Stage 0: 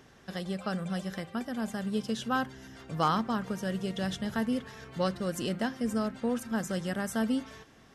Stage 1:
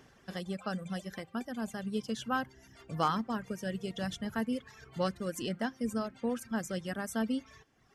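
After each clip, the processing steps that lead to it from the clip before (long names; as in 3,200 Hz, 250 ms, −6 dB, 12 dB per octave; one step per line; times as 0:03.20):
notch filter 3,800 Hz, Q 14
reverb reduction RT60 1.2 s
level −2 dB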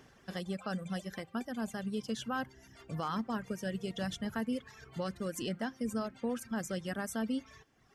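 brickwall limiter −26.5 dBFS, peak gain reduction 9 dB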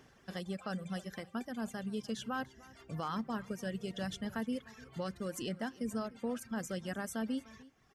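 single-tap delay 300 ms −21 dB
level −2 dB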